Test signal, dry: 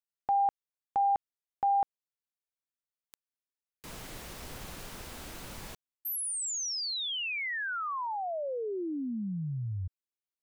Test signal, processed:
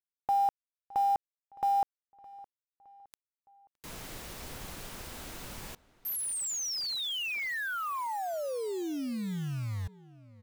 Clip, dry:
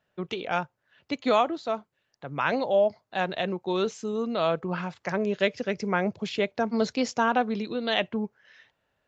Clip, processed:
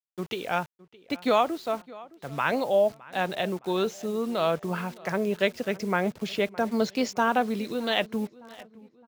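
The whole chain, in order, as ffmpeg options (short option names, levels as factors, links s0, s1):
-filter_complex "[0:a]acrusher=bits=7:mix=0:aa=0.000001,asplit=2[s0][s1];[s1]adelay=614,lowpass=f=3000:p=1,volume=0.0944,asplit=2[s2][s3];[s3]adelay=614,lowpass=f=3000:p=1,volume=0.46,asplit=2[s4][s5];[s5]adelay=614,lowpass=f=3000:p=1,volume=0.46[s6];[s0][s2][s4][s6]amix=inputs=4:normalize=0"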